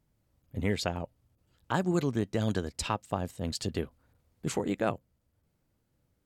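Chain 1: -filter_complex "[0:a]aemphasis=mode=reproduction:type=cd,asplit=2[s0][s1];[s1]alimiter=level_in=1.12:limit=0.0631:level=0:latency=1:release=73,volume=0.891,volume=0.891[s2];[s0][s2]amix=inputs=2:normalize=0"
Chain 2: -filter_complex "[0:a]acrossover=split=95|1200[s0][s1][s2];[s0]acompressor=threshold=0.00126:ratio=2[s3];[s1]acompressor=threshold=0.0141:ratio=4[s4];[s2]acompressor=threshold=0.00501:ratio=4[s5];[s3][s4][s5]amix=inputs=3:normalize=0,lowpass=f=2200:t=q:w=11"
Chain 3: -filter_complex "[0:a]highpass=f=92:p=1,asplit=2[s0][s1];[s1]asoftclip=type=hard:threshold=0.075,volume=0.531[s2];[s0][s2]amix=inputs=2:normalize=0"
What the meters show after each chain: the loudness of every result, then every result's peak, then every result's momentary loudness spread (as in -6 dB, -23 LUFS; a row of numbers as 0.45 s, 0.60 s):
-29.5 LUFS, -38.0 LUFS, -30.0 LUFS; -12.0 dBFS, -16.5 dBFS, -11.0 dBFS; 10 LU, 12 LU, 11 LU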